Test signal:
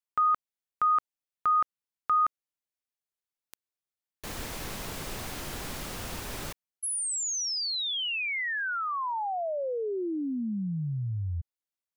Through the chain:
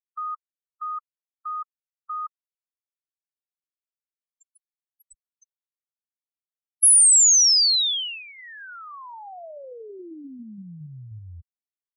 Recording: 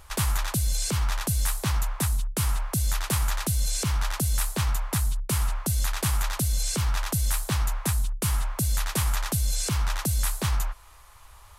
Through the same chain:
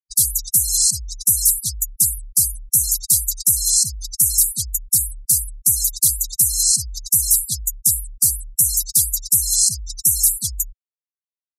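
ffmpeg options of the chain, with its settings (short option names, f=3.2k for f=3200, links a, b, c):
-af "aexciter=amount=12.6:drive=3.7:freq=3.5k,afftfilt=real='re*gte(hypot(re,im),0.282)':imag='im*gte(hypot(re,im),0.282)':win_size=1024:overlap=0.75,afftdn=nr=18:nf=-34,volume=-6.5dB"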